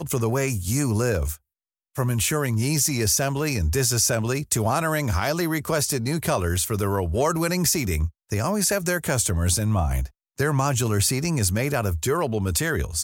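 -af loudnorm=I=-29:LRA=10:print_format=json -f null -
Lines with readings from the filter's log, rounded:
"input_i" : "-23.2",
"input_tp" : "-8.3",
"input_lra" : "1.2",
"input_thresh" : "-33.2",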